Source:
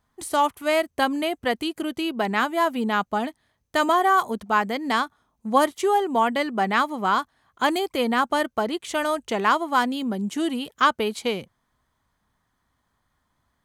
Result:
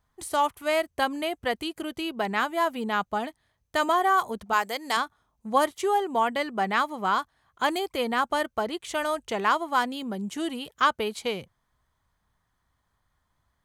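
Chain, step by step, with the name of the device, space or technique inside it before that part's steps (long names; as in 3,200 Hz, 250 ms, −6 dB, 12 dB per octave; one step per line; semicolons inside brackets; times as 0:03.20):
low shelf boost with a cut just above (low-shelf EQ 110 Hz +5.5 dB; parametric band 250 Hz −5.5 dB 0.84 octaves)
0:04.53–0:04.97: bass and treble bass −14 dB, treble +10 dB
level −3 dB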